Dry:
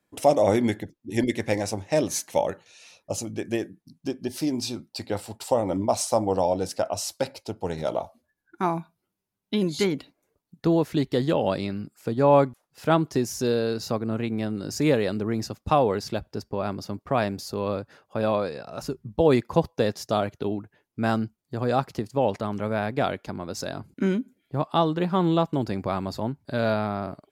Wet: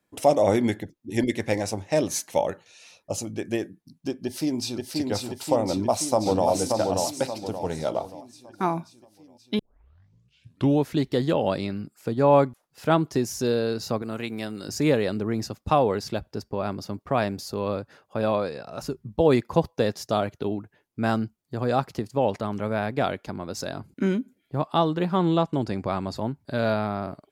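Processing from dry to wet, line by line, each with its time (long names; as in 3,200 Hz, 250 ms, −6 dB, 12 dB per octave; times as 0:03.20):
0:04.23–0:04.92: delay throw 530 ms, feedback 70%, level −2.5 dB
0:05.67–0:06.47: delay throw 580 ms, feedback 40%, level −3.5 dB
0:09.59: tape start 1.31 s
0:14.02–0:14.69: spectral tilt +2.5 dB per octave
0:25.17–0:26.16: low-pass filter 11,000 Hz 24 dB per octave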